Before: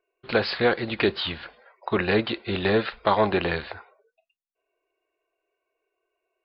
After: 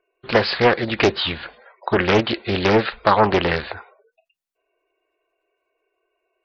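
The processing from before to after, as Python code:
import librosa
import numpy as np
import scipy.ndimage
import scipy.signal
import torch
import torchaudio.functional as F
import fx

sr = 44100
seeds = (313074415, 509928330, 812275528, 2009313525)

y = fx.spec_gate(x, sr, threshold_db=-30, keep='strong')
y = fx.doppler_dist(y, sr, depth_ms=0.48)
y = y * librosa.db_to_amplitude(6.0)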